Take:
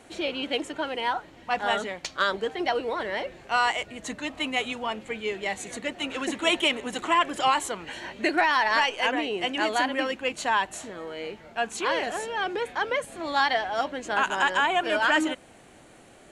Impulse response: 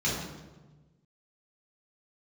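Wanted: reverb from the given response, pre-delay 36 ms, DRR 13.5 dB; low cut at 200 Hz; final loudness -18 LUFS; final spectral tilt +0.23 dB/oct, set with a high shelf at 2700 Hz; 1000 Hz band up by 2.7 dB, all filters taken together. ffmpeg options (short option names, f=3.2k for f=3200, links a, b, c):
-filter_complex "[0:a]highpass=200,equalizer=f=1k:t=o:g=4.5,highshelf=f=2.7k:g=-8.5,asplit=2[a][b];[1:a]atrim=start_sample=2205,adelay=36[c];[b][c]afir=irnorm=-1:irlink=0,volume=-24dB[d];[a][d]amix=inputs=2:normalize=0,volume=8dB"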